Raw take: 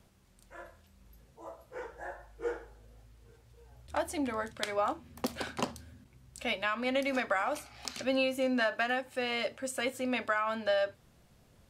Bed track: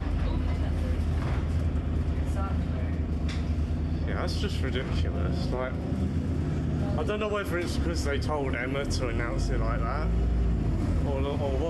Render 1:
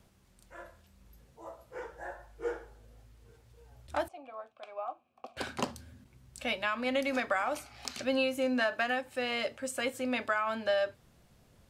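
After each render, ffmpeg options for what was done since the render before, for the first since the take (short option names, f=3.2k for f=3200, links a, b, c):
-filter_complex "[0:a]asettb=1/sr,asplit=3[a][b][c];[a]atrim=end=4.084[d];[b]atrim=start=4.08:end=5.37,asetpts=PTS-STARTPTS,afade=t=in:d=0.004:c=qsin,afade=t=out:st=1.286:d=0.004:c=qsin,asplit=3[e][f][g];[e]bandpass=f=730:t=q:w=8,volume=0dB[h];[f]bandpass=f=1.09k:t=q:w=8,volume=-6dB[i];[g]bandpass=f=2.44k:t=q:w=8,volume=-9dB[j];[h][i][j]amix=inputs=3:normalize=0[k];[c]atrim=start=5.366[l];[d][k]acrossfade=d=0.004:c1=hsin:c2=qsin[m];[m][l]acrossfade=d=0.004:c1=qsin:c2=hsin"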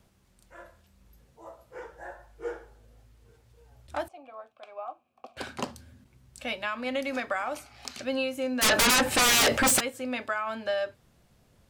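-filter_complex "[0:a]asplit=3[a][b][c];[a]afade=t=out:st=8.61:d=0.02[d];[b]aeval=exprs='0.126*sin(PI/2*10*val(0)/0.126)':c=same,afade=t=in:st=8.61:d=0.02,afade=t=out:st=9.79:d=0.02[e];[c]afade=t=in:st=9.79:d=0.02[f];[d][e][f]amix=inputs=3:normalize=0"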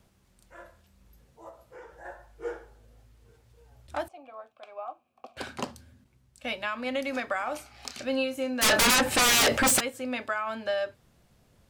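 -filter_complex "[0:a]asplit=3[a][b][c];[a]afade=t=out:st=1.49:d=0.02[d];[b]acompressor=threshold=-46dB:ratio=2:attack=3.2:release=140:knee=1:detection=peak,afade=t=in:st=1.49:d=0.02,afade=t=out:st=2.04:d=0.02[e];[c]afade=t=in:st=2.04:d=0.02[f];[d][e][f]amix=inputs=3:normalize=0,asettb=1/sr,asplit=3[g][h][i];[g]atrim=end=7.444[j];[h]atrim=start=7.44:end=8.95,asetpts=PTS-STARTPTS,afade=t=in:d=0.004:c=qsin,afade=t=out:st=1.506:d=0.004:c=qsin,asplit=2[k][l];[l]adelay=30,volume=-11dB[m];[k][m]amix=inputs=2:normalize=0,atrim=end_sample=66591[n];[i]atrim=start=8.946[o];[j][n]acrossfade=d=0.004:c1=hsin:c2=qsin[p];[p][o]acrossfade=d=0.004:c1=qsin:c2=hsin,asplit=2[q][r];[q]atrim=end=6.44,asetpts=PTS-STARTPTS,afade=t=out:st=5.54:d=0.9:silence=0.334965[s];[r]atrim=start=6.44,asetpts=PTS-STARTPTS,afade=t=in:d=0.004:c=hsin:silence=0.334965[t];[s][t]concat=n=2:v=0:a=1"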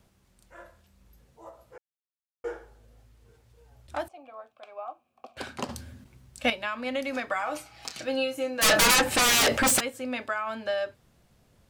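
-filter_complex "[0:a]asettb=1/sr,asplit=3[a][b][c];[a]atrim=end=7.294[d];[b]atrim=start=7.29:end=9.04,asetpts=PTS-STARTPTS,afade=t=in:d=0.004:c=qsin,afade=t=out:st=1.746:d=0.004:c=qsin,aecho=1:1:6.2:0.64,atrim=end_sample=77175[e];[c]atrim=start=9.036[f];[d][e]acrossfade=d=0.004:c1=hsin:c2=qsin[g];[g][f]acrossfade=d=0.004:c1=qsin:c2=hsin,asplit=5[h][i][j][k][l];[h]atrim=end=1.78,asetpts=PTS-STARTPTS,afade=t=out:st=1.776:d=0.004:c=hsin[m];[i]atrim=start=1.78:end=2.44,asetpts=PTS-STARTPTS,volume=0[n];[j]atrim=start=2.44:end=5.692,asetpts=PTS-STARTPTS,afade=t=in:d=0.004:c=hsin[o];[k]atrim=start=5.688:end=6.502,asetpts=PTS-STARTPTS,volume=10dB[p];[l]atrim=start=6.498[q];[m][n][o]concat=n=3:v=0:a=1[r];[r][p]acrossfade=d=0.004:c1=hsin:c2=hsin[s];[s][q]acrossfade=d=0.004:c1=hsin:c2=hsin"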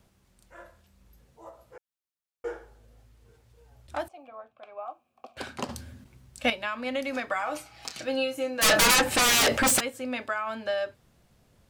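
-filter_complex "[0:a]asettb=1/sr,asplit=3[a][b][c];[a]atrim=end=4.284[d];[b]atrim=start=4.28:end=4.86,asetpts=PTS-STARTPTS,afade=t=in:d=0.004:c=qsin,afade=t=out:st=0.576:d=0.004:c=qsin,bass=f=250:g=6,treble=f=4k:g=-11[e];[c]atrim=start=4.856[f];[d][e]acrossfade=d=0.004:c1=hsin:c2=qsin[g];[g][f]acrossfade=d=0.004:c1=qsin:c2=hsin"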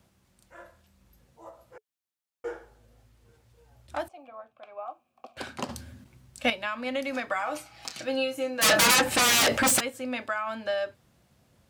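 -af "highpass=63,bandreject=f=430:w=12"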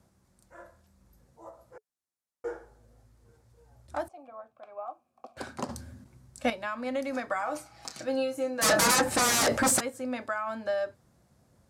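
-af "lowpass=12k,equalizer=f=2.9k:w=1.3:g=-10.5"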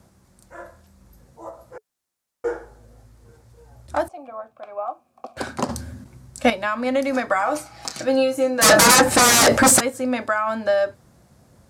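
-af "volume=10.5dB,alimiter=limit=-2dB:level=0:latency=1"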